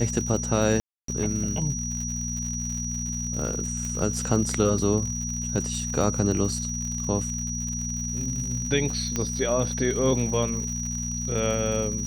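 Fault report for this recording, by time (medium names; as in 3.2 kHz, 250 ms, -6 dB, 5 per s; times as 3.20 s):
crackle 130 per s -32 dBFS
hum 60 Hz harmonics 4 -32 dBFS
whine 5.8 kHz -31 dBFS
0.80–1.08 s: dropout 283 ms
3.85 s: pop -21 dBFS
9.16 s: pop -12 dBFS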